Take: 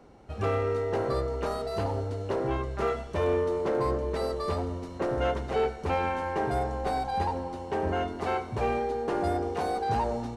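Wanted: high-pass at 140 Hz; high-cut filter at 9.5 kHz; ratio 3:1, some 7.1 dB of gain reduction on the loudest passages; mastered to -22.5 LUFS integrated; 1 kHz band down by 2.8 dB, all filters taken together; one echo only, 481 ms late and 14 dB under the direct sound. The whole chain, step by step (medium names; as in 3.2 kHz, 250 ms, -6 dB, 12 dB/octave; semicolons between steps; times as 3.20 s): high-pass 140 Hz; low-pass 9.5 kHz; peaking EQ 1 kHz -4 dB; compression 3:1, threshold -34 dBFS; delay 481 ms -14 dB; trim +14 dB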